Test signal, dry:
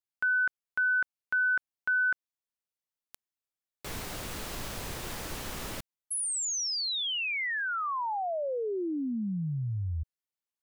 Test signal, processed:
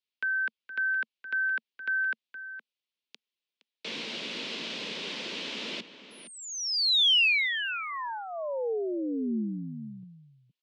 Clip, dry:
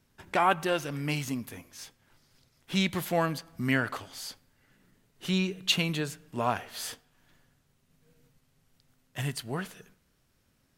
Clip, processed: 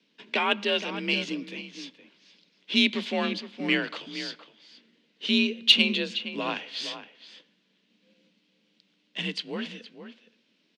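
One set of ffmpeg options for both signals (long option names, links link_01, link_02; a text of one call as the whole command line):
ffmpeg -i in.wav -filter_complex "[0:a]highpass=frequency=150:width=0.5412,highpass=frequency=150:width=1.3066,equalizer=frequency=180:width_type=q:width=4:gain=4,equalizer=frequency=410:width_type=q:width=4:gain=3,equalizer=frequency=720:width_type=q:width=4:gain=-8,equalizer=frequency=1200:width_type=q:width=4:gain=-6,lowpass=frequency=3700:width=0.5412,lowpass=frequency=3700:width=1.3066,asplit=2[link_01][link_02];[link_02]adelay=466.5,volume=-11dB,highshelf=frequency=4000:gain=-10.5[link_03];[link_01][link_03]amix=inputs=2:normalize=0,acrossover=split=700|1300[link_04][link_05][link_06];[link_06]aexciter=amount=3.5:drive=6.9:freq=2300[link_07];[link_04][link_05][link_07]amix=inputs=3:normalize=0,afreqshift=44" out.wav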